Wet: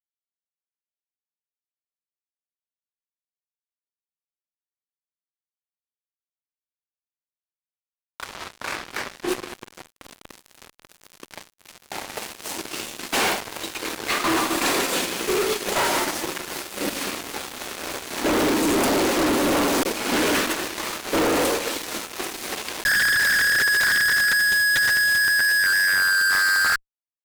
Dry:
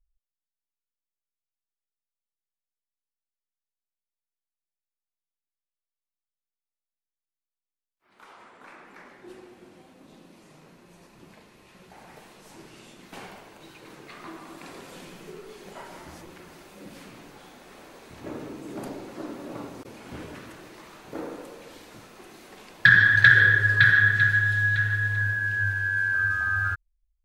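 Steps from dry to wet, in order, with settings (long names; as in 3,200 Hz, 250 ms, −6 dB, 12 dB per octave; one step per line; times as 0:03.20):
high-pass filter 230 Hz 24 dB per octave
noise gate −43 dBFS, range −8 dB
high-shelf EQ 2,200 Hz +6.5 dB
in parallel at +3 dB: compressor whose output falls as the input rises −25 dBFS, ratio −0.5
on the sum: shaped tremolo triangle 3.7 Hz, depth 30%
fuzz pedal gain 40 dB, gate −44 dBFS
level −5.5 dB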